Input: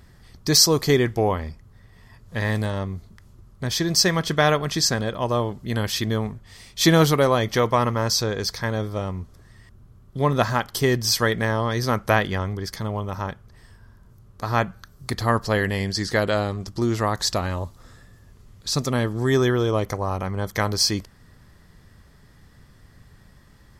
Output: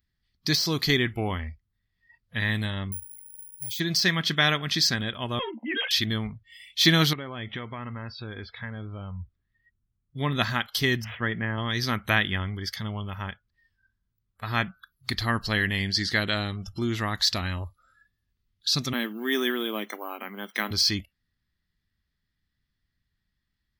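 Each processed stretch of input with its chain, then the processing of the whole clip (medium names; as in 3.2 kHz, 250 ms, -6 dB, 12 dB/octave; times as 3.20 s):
2.92–3.80 s: Chebyshev band-stop 1–2 kHz, order 3 + compression, threshold -33 dBFS + careless resampling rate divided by 4×, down filtered, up zero stuff
5.39–5.91 s: formants replaced by sine waves + valve stage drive 16 dB, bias 0.25 + doubling 13 ms -4 dB
7.13–10.17 s: compression 3:1, threshold -26 dBFS + distance through air 310 m
11.04–11.58 s: median filter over 9 samples + high-pass 63 Hz + distance through air 500 m
18.93–20.71 s: elliptic high-pass 210 Hz + modulation noise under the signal 23 dB + careless resampling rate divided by 3×, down filtered, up hold
whole clip: spectral noise reduction 26 dB; ten-band graphic EQ 125 Hz -5 dB, 500 Hz -12 dB, 1 kHz -7 dB, 2 kHz +3 dB, 4 kHz +8 dB, 8 kHz -10 dB; de-esser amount 40%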